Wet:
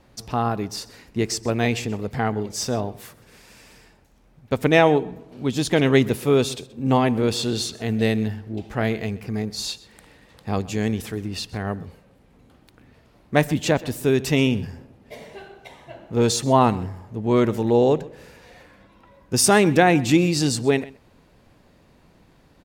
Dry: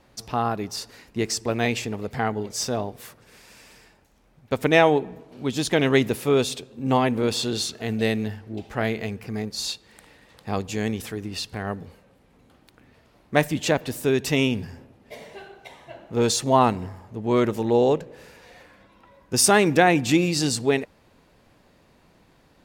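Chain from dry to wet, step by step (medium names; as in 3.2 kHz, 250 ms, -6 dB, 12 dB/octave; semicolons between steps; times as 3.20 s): bass shelf 300 Hz +5 dB; delay 128 ms -20.5 dB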